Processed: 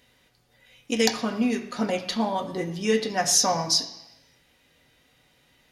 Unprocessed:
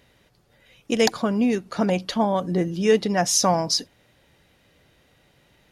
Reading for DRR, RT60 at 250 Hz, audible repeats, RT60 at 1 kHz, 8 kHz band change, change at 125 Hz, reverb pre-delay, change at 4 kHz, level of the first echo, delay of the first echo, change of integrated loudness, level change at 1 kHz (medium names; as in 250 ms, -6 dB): 2.0 dB, 0.95 s, no echo, 1.0 s, +1.0 dB, -7.5 dB, 3 ms, +1.0 dB, no echo, no echo, -2.5 dB, -3.0 dB